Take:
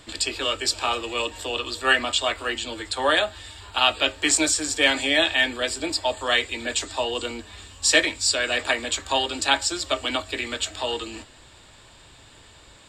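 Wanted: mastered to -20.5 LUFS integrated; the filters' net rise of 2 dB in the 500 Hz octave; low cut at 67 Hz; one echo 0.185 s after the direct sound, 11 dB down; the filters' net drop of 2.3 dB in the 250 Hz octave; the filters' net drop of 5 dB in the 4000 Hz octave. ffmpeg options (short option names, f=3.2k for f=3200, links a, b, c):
-af "highpass=67,equalizer=f=250:t=o:g=-4.5,equalizer=f=500:t=o:g=3.5,equalizer=f=4k:t=o:g=-7,aecho=1:1:185:0.282,volume=4dB"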